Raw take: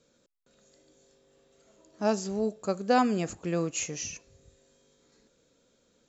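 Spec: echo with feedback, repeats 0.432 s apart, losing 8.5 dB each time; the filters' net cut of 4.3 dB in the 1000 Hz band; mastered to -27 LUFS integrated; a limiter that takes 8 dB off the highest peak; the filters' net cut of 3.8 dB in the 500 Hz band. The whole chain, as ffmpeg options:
-af "equalizer=f=500:t=o:g=-3.5,equalizer=f=1k:t=o:g=-4.5,alimiter=limit=-23dB:level=0:latency=1,aecho=1:1:432|864|1296|1728:0.376|0.143|0.0543|0.0206,volume=7dB"

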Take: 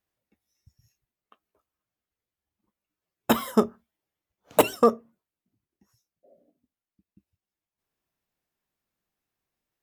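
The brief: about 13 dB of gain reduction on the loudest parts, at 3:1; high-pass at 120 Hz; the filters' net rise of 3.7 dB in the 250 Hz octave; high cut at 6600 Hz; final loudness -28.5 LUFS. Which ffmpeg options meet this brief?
-af "highpass=120,lowpass=6.6k,equalizer=f=250:t=o:g=4.5,acompressor=threshold=-30dB:ratio=3,volume=6dB"

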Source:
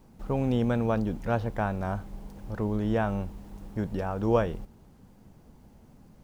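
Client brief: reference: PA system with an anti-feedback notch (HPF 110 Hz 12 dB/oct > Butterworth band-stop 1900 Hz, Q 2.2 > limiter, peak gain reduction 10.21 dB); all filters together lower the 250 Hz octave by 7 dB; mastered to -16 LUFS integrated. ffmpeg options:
-af "highpass=110,asuperstop=centerf=1900:order=8:qfactor=2.2,equalizer=f=250:t=o:g=-8.5,volume=21dB,alimiter=limit=-3.5dB:level=0:latency=1"

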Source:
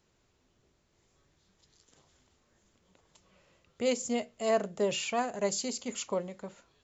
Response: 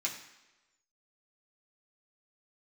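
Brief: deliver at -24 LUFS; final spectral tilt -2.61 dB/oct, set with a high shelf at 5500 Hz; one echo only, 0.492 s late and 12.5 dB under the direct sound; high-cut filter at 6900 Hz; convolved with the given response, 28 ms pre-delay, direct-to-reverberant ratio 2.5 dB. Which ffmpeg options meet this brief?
-filter_complex "[0:a]lowpass=6.9k,highshelf=f=5.5k:g=3,aecho=1:1:492:0.237,asplit=2[a][b];[1:a]atrim=start_sample=2205,adelay=28[c];[b][c]afir=irnorm=-1:irlink=0,volume=-6dB[d];[a][d]amix=inputs=2:normalize=0,volume=7dB"

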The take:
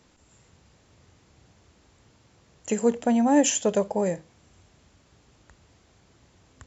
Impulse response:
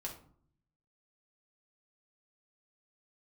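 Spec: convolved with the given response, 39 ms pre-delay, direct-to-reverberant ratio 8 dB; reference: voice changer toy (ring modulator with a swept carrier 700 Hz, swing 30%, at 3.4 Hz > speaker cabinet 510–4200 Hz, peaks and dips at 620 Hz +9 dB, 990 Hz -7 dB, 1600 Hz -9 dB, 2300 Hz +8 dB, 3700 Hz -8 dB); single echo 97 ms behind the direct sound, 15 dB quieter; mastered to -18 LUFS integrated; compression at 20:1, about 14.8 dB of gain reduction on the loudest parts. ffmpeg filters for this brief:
-filter_complex "[0:a]acompressor=threshold=-30dB:ratio=20,aecho=1:1:97:0.178,asplit=2[a][b];[1:a]atrim=start_sample=2205,adelay=39[c];[b][c]afir=irnorm=-1:irlink=0,volume=-6.5dB[d];[a][d]amix=inputs=2:normalize=0,aeval=exprs='val(0)*sin(2*PI*700*n/s+700*0.3/3.4*sin(2*PI*3.4*n/s))':c=same,highpass=510,equalizer=f=620:t=q:w=4:g=9,equalizer=f=990:t=q:w=4:g=-7,equalizer=f=1.6k:t=q:w=4:g=-9,equalizer=f=2.3k:t=q:w=4:g=8,equalizer=f=3.7k:t=q:w=4:g=-8,lowpass=f=4.2k:w=0.5412,lowpass=f=4.2k:w=1.3066,volume=22dB"

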